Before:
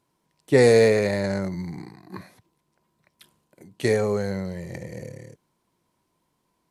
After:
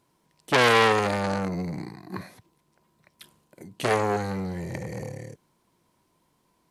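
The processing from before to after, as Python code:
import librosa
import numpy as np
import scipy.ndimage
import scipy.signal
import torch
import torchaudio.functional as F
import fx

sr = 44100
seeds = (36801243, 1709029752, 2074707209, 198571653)

y = fx.transformer_sat(x, sr, knee_hz=3300.0)
y = y * 10.0 ** (4.0 / 20.0)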